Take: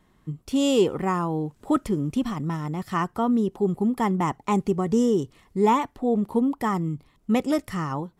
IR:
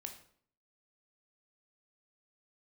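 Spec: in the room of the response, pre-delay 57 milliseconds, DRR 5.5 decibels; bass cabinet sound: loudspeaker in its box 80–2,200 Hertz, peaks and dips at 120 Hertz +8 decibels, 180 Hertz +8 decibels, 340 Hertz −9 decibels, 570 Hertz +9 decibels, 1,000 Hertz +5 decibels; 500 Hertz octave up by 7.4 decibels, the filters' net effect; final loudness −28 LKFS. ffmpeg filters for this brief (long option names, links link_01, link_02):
-filter_complex "[0:a]equalizer=frequency=500:width_type=o:gain=6.5,asplit=2[link_01][link_02];[1:a]atrim=start_sample=2205,adelay=57[link_03];[link_02][link_03]afir=irnorm=-1:irlink=0,volume=-2dB[link_04];[link_01][link_04]amix=inputs=2:normalize=0,highpass=frequency=80:width=0.5412,highpass=frequency=80:width=1.3066,equalizer=frequency=120:width_type=q:width=4:gain=8,equalizer=frequency=180:width_type=q:width=4:gain=8,equalizer=frequency=340:width_type=q:width=4:gain=-9,equalizer=frequency=570:width_type=q:width=4:gain=9,equalizer=frequency=1000:width_type=q:width=4:gain=5,lowpass=frequency=2200:width=0.5412,lowpass=frequency=2200:width=1.3066,volume=-9.5dB"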